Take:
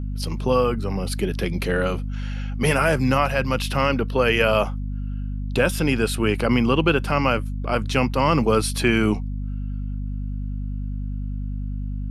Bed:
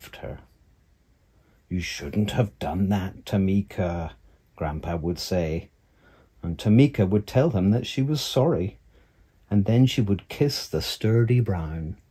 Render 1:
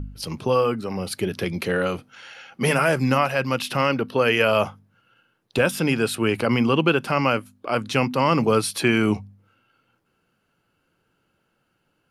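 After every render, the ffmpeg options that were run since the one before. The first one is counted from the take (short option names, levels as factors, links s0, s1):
-af "bandreject=f=50:t=h:w=4,bandreject=f=100:t=h:w=4,bandreject=f=150:t=h:w=4,bandreject=f=200:t=h:w=4,bandreject=f=250:t=h:w=4"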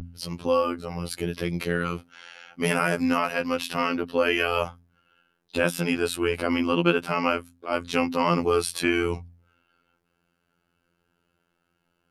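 -af "afftfilt=real='hypot(re,im)*cos(PI*b)':imag='0':win_size=2048:overlap=0.75"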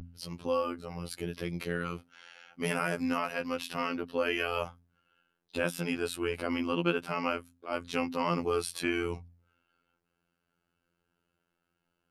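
-af "volume=0.422"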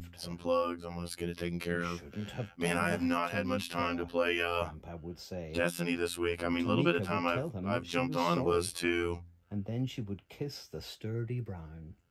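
-filter_complex "[1:a]volume=0.158[s0];[0:a][s0]amix=inputs=2:normalize=0"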